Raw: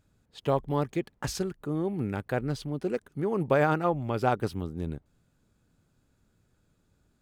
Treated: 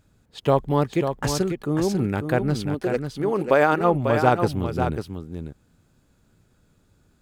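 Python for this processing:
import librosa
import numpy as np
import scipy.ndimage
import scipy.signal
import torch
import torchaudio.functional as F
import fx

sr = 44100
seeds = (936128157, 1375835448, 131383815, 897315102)

y = fx.peak_eq(x, sr, hz=120.0, db=-13.0, octaves=1.3, at=(2.74, 3.81))
y = y + 10.0 ** (-7.0 / 20.0) * np.pad(y, (int(544 * sr / 1000.0), 0))[:len(y)]
y = y * 10.0 ** (7.0 / 20.0)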